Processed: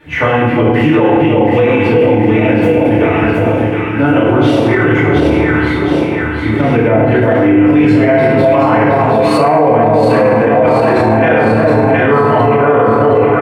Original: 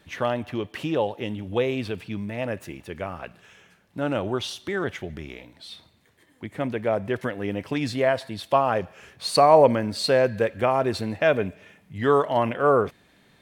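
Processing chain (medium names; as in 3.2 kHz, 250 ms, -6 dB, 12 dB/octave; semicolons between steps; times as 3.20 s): resonant high shelf 3.3 kHz -11 dB, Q 1.5; doubling 27 ms -7 dB; echo whose repeats swap between lows and highs 359 ms, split 1 kHz, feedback 75%, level -2 dB; FDN reverb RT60 1.2 s, low-frequency decay 1.55×, high-frequency decay 0.7×, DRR -9.5 dB; loudness maximiser +9 dB; trim -1 dB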